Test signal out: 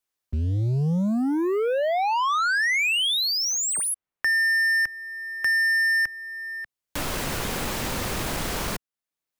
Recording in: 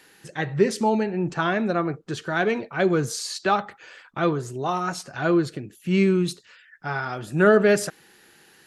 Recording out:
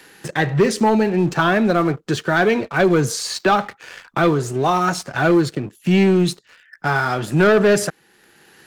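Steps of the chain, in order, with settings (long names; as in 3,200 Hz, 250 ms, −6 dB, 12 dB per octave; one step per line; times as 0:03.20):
leveller curve on the samples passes 2
multiband upward and downward compressor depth 40%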